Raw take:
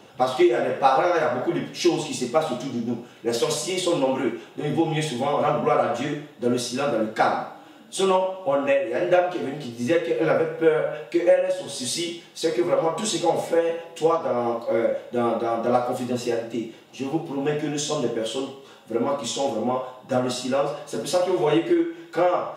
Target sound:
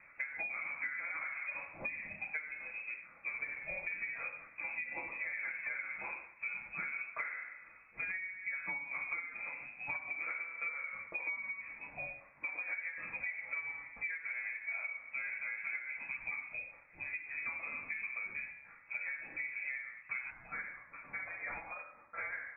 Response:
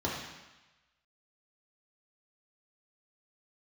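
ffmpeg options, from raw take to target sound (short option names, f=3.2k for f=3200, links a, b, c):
-af "asetnsamples=n=441:p=0,asendcmd='20.3 highpass f 1200',highpass=460,lowpass=f=2.4k:t=q:w=0.5098,lowpass=f=2.4k:t=q:w=0.6013,lowpass=f=2.4k:t=q:w=0.9,lowpass=f=2.4k:t=q:w=2.563,afreqshift=-2800,acompressor=threshold=-30dB:ratio=10,volume=-7dB"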